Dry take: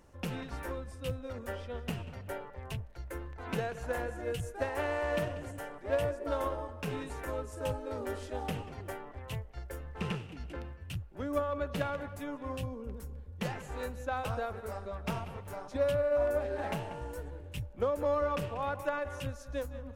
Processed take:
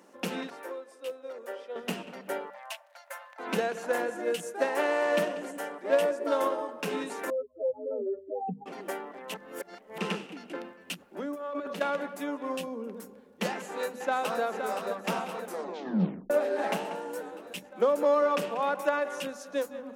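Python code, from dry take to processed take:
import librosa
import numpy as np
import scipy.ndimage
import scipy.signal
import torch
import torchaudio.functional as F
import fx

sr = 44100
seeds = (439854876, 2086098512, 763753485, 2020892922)

y = fx.ladder_highpass(x, sr, hz=340.0, resonance_pct=35, at=(0.5, 1.76))
y = fx.brickwall_highpass(y, sr, low_hz=540.0, at=(2.49, 3.38), fade=0.02)
y = fx.spec_expand(y, sr, power=4.0, at=(7.3, 8.66))
y = fx.over_compress(y, sr, threshold_db=-39.0, ratio=-1.0, at=(10.86, 11.8), fade=0.02)
y = fx.echo_throw(y, sr, start_s=13.48, length_s=0.93, ms=520, feedback_pct=75, wet_db=-7.0)
y = fx.edit(y, sr, fx.reverse_span(start_s=9.34, length_s=0.64),
    fx.tape_stop(start_s=15.42, length_s=0.88), tone=tone)
y = scipy.signal.sosfilt(scipy.signal.ellip(4, 1.0, 40, 190.0, 'highpass', fs=sr, output='sos'), y)
y = fx.hum_notches(y, sr, base_hz=50, count=5)
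y = fx.dynamic_eq(y, sr, hz=6000.0, q=0.75, threshold_db=-55.0, ratio=4.0, max_db=3)
y = F.gain(torch.from_numpy(y), 6.5).numpy()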